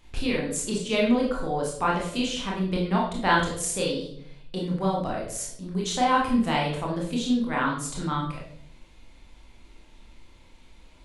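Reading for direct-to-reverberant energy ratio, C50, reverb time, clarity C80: −3.5 dB, 4.0 dB, 0.70 s, 8.0 dB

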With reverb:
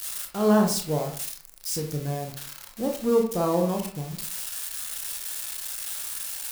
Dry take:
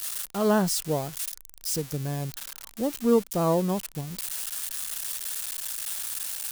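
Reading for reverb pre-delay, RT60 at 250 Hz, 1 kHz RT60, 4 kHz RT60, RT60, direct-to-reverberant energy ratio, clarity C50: 22 ms, 0.55 s, 0.50 s, 0.30 s, 0.50 s, 1.5 dB, 8.0 dB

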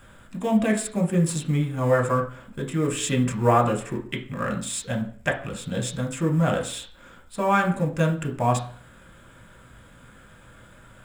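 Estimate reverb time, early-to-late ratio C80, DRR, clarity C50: 0.45 s, 15.0 dB, 2.0 dB, 10.5 dB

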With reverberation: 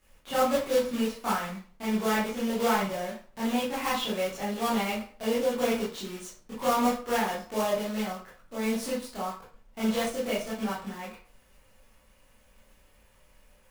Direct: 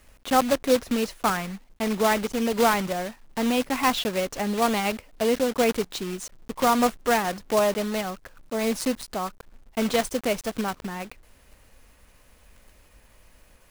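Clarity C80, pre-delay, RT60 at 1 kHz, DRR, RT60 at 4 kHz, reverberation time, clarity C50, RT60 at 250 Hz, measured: 10.0 dB, 17 ms, 0.45 s, −9.5 dB, 0.30 s, 0.40 s, 3.5 dB, 0.40 s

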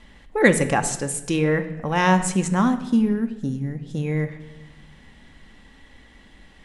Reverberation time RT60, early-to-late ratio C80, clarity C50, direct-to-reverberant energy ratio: 1.0 s, 14.5 dB, 12.5 dB, 7.5 dB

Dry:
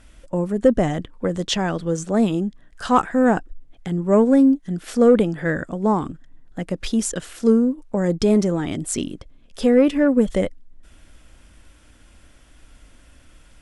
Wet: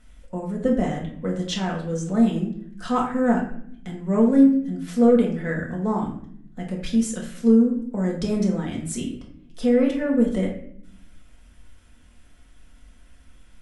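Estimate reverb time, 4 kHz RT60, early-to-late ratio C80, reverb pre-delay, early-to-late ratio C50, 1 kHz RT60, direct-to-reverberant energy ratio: 0.65 s, 0.45 s, 10.0 dB, 4 ms, 6.0 dB, 0.55 s, −2.5 dB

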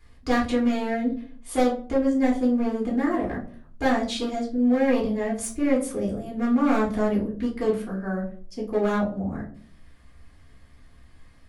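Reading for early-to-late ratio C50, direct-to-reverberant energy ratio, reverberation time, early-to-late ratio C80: 8.5 dB, −6.0 dB, non-exponential decay, 14.5 dB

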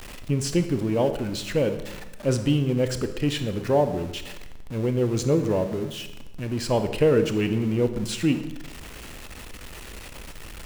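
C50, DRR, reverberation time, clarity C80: 10.5 dB, 8.5 dB, 1.0 s, 12.5 dB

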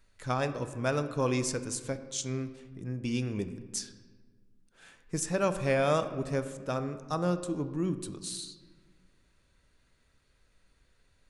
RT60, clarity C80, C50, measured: 1.6 s, 13.0 dB, 11.5 dB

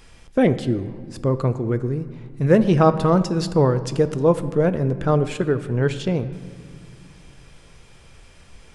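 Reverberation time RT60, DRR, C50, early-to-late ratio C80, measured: 2.0 s, 11.5 dB, 13.5 dB, 15.0 dB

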